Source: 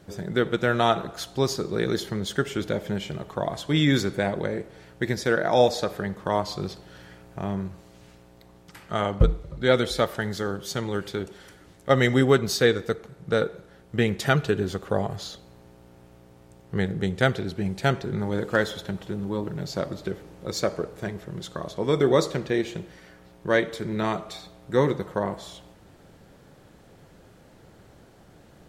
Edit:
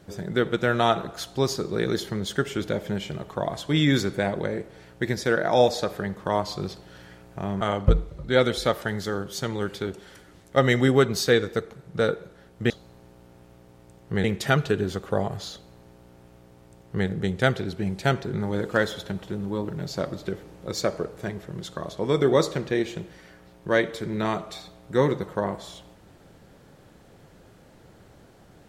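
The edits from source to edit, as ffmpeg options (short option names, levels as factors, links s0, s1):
-filter_complex "[0:a]asplit=4[s0][s1][s2][s3];[s0]atrim=end=7.612[s4];[s1]atrim=start=8.938:end=14.032[s5];[s2]atrim=start=15.318:end=16.862[s6];[s3]atrim=start=14.028[s7];[s4][s5]acrossfade=d=0.004:c1=hsin:c2=hsin[s8];[s8][s6]acrossfade=d=0.004:c1=hsin:c2=hsin[s9];[s9][s7]acrossfade=d=0.004:c1=hsin:c2=hsin"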